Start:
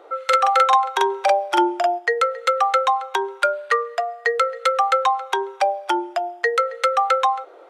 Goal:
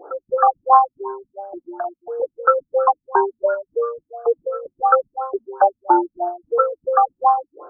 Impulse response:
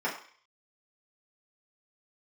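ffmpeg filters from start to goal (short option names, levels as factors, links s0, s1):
-filter_complex "[0:a]asettb=1/sr,asplit=3[s0][s1][s2];[s0]atrim=end=0.904[s3];[s1]atrim=start=0.9:end=2.2,asetpts=PTS-STARTPTS,afade=t=in:d=0.004:c=qsin,afade=t=out:st=1.296:d=0.004:c=qsin,acompressor=threshold=0.0355:ratio=6[s4];[s2]atrim=start=2.196[s5];[s3][s4]acrossfade=d=0.004:c1=hsin:c2=qsin[s6];[s6][s5]acrossfade=d=0.004:c1=qsin:c2=hsin,asplit=2[s7][s8];[1:a]atrim=start_sample=2205[s9];[s8][s9]afir=irnorm=-1:irlink=0,volume=0.15[s10];[s7][s10]amix=inputs=2:normalize=0,afftfilt=real='re*lt(b*sr/1024,240*pow(1700/240,0.5+0.5*sin(2*PI*2.9*pts/sr)))':imag='im*lt(b*sr/1024,240*pow(1700/240,0.5+0.5*sin(2*PI*2.9*pts/sr)))':win_size=1024:overlap=0.75,volume=2"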